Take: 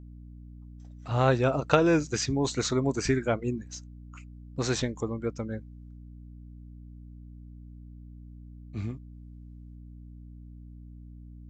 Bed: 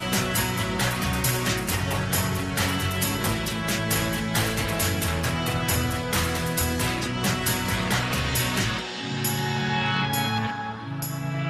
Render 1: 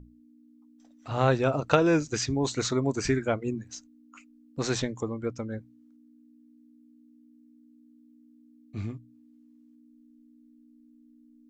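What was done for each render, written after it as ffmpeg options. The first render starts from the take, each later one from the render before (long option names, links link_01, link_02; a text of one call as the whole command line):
ffmpeg -i in.wav -af "bandreject=frequency=60:width_type=h:width=6,bandreject=frequency=120:width_type=h:width=6,bandreject=frequency=180:width_type=h:width=6" out.wav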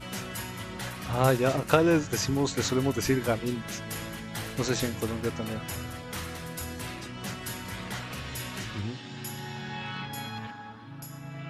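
ffmpeg -i in.wav -i bed.wav -filter_complex "[1:a]volume=-12dB[link_01];[0:a][link_01]amix=inputs=2:normalize=0" out.wav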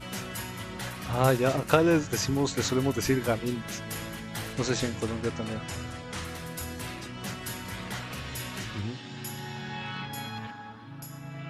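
ffmpeg -i in.wav -filter_complex "[0:a]asettb=1/sr,asplit=3[link_01][link_02][link_03];[link_01]atrim=end=4.534[link_04];[link_02]atrim=start=4.53:end=6.25,asetpts=PTS-STARTPTS,afade=type=in:duration=0.004:curve=qsin,afade=type=out:start_time=1.716:duration=0.004:curve=qsin,lowpass=frequency=9400:width=0.5412,lowpass=frequency=9400:width=1.3066[link_05];[link_03]atrim=start=6.246[link_06];[link_04][link_05]acrossfade=duration=0.004:curve1=hsin:curve2=qsin[link_07];[link_07][link_06]acrossfade=duration=0.004:curve1=qsin:curve2=hsin" out.wav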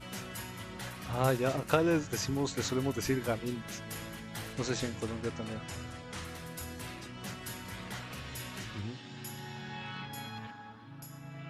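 ffmpeg -i in.wav -af "volume=-5.5dB" out.wav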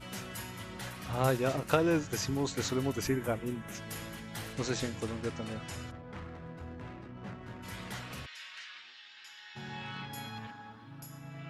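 ffmpeg -i in.wav -filter_complex "[0:a]asettb=1/sr,asplit=3[link_01][link_02][link_03];[link_01]atrim=end=3.074[link_04];[link_02]atrim=start=3.07:end=3.75,asetpts=PTS-STARTPTS,afade=type=in:duration=0.004:curve=qsin,afade=type=out:start_time=0.676:duration=0.004:curve=qsin,equalizer=frequency=4500:width=1.7:gain=-14.5[link_05];[link_03]atrim=start=3.746[link_06];[link_04][link_05]acrossfade=duration=0.004:curve1=hsin:curve2=qsin[link_07];[link_07][link_06]acrossfade=duration=0.004:curve1=qsin:curve2=hsin,asplit=3[link_08][link_09][link_10];[link_08]afade=type=out:start_time=5.9:duration=0.02[link_11];[link_09]adynamicsmooth=sensitivity=5.5:basefreq=1000,afade=type=in:start_time=5.9:duration=0.02,afade=type=out:start_time=7.62:duration=0.02[link_12];[link_10]afade=type=in:start_time=7.62:duration=0.02[link_13];[link_11][link_12][link_13]amix=inputs=3:normalize=0,asplit=3[link_14][link_15][link_16];[link_14]afade=type=out:start_time=8.25:duration=0.02[link_17];[link_15]asuperpass=centerf=2700:order=4:qfactor=0.76,afade=type=in:start_time=8.25:duration=0.02,afade=type=out:start_time=9.55:duration=0.02[link_18];[link_16]afade=type=in:start_time=9.55:duration=0.02[link_19];[link_17][link_18][link_19]amix=inputs=3:normalize=0" out.wav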